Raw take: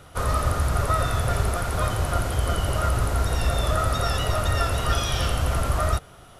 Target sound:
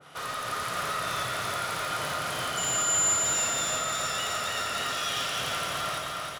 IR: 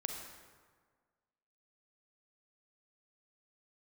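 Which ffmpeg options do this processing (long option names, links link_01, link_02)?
-filter_complex "[0:a]highpass=frequency=130:width=0.5412,highpass=frequency=130:width=1.3066,equalizer=frequency=2400:width=0.34:gain=10,acompressor=threshold=-24dB:ratio=6,asoftclip=type=hard:threshold=-27dB,asettb=1/sr,asplit=3[link_01][link_02][link_03];[link_01]atrim=end=0.724[link_04];[link_02]atrim=start=0.72:end=1.23,asetpts=PTS-STARTPTS,afade=type=in:duration=0.004:curve=qsin,afade=type=out:start_time=0.506:duration=0.004:curve=qsin,asplit=2[link_05][link_06];[link_06]adelay=49,volume=-3dB[link_07];[link_05][link_07]amix=inputs=2:normalize=0,atrim=end_sample=22491[link_08];[link_03]atrim=start=1.226[link_09];[link_04][link_08]acrossfade=duration=0.004:curve1=hsin:curve2=qsin[link_10];[link_10][link_09]acrossfade=duration=0.004:curve1=qsin:curve2=hsin,asettb=1/sr,asplit=3[link_11][link_12][link_13];[link_11]atrim=end=2.574[link_14];[link_12]atrim=start=2.57:end=3.14,asetpts=PTS-STARTPTS,afade=type=in:duration=0.004:curve=qsin,afade=type=out:start_time=0.566:duration=0.004:curve=qsin,aeval=exprs='val(0)+0.0398*sin(2*PI*7100*n/s)':channel_layout=same[link_15];[link_13]atrim=start=3.136[link_16];[link_14][link_15]acrossfade=duration=0.004:curve1=hsin:curve2=qsin[link_17];[link_17][link_16]acrossfade=duration=0.004:curve1=qsin:curve2=hsin,aecho=1:1:310|620|930|1240|1550|1860|2170|2480|2790:0.596|0.357|0.214|0.129|0.0772|0.0463|0.0278|0.0167|0.01[link_18];[1:a]atrim=start_sample=2205,asetrate=41895,aresample=44100[link_19];[link_18][link_19]afir=irnorm=-1:irlink=0,adynamicequalizer=threshold=0.00794:dfrequency=1500:dqfactor=0.7:tfrequency=1500:tqfactor=0.7:attack=5:release=100:ratio=0.375:range=2.5:mode=boostabove:tftype=highshelf,volume=-6.5dB"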